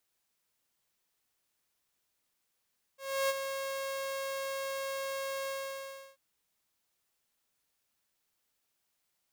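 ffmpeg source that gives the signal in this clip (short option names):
-f lavfi -i "aevalsrc='0.0631*(2*mod(543*t,1)-1)':d=3.188:s=44100,afade=t=in:d=0.312,afade=t=out:st=0.312:d=0.034:silence=0.398,afade=t=out:st=2.5:d=0.688"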